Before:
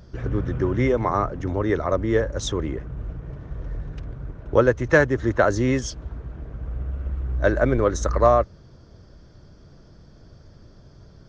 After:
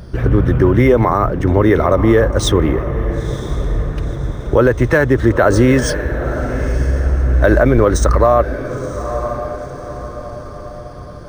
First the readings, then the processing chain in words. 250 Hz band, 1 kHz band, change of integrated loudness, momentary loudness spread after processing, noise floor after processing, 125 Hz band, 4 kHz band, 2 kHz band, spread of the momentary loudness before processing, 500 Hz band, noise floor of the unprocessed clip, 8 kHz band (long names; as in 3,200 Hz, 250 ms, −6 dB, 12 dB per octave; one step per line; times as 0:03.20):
+10.5 dB, +7.0 dB, +7.5 dB, 16 LU, −31 dBFS, +11.0 dB, +10.0 dB, +6.5 dB, 17 LU, +8.0 dB, −50 dBFS, +8.5 dB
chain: feedback delay with all-pass diffusion 958 ms, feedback 46%, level −15 dB
boost into a limiter +13.5 dB
linearly interpolated sample-rate reduction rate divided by 3×
level −1 dB